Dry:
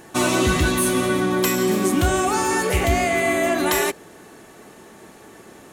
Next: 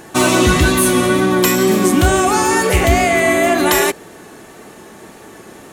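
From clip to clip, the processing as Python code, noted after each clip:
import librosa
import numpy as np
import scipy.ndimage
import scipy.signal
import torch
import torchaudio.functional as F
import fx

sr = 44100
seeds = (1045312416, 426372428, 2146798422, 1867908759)

y = fx.wow_flutter(x, sr, seeds[0], rate_hz=2.1, depth_cents=28.0)
y = y * 10.0 ** (6.5 / 20.0)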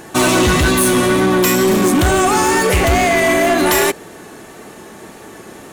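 y = np.clip(10.0 ** (11.5 / 20.0) * x, -1.0, 1.0) / 10.0 ** (11.5 / 20.0)
y = y * 10.0 ** (2.0 / 20.0)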